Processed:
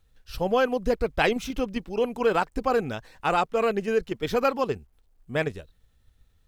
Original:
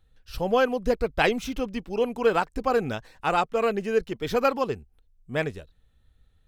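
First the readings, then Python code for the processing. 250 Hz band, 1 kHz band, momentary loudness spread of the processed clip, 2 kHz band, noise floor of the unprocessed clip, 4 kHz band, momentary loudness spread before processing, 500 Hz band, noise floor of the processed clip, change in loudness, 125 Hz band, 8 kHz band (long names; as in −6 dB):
0.0 dB, 0.0 dB, 8 LU, −0.5 dB, −64 dBFS, 0.0 dB, 9 LU, 0.0 dB, −64 dBFS, 0.0 dB, 0.0 dB, 0.0 dB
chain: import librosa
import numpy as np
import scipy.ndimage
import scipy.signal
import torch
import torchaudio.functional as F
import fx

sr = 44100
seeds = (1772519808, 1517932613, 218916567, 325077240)

p1 = fx.level_steps(x, sr, step_db=14)
p2 = x + F.gain(torch.from_numpy(p1), 1.5).numpy()
p3 = fx.quant_dither(p2, sr, seeds[0], bits=12, dither='none')
y = F.gain(torch.from_numpy(p3), -4.0).numpy()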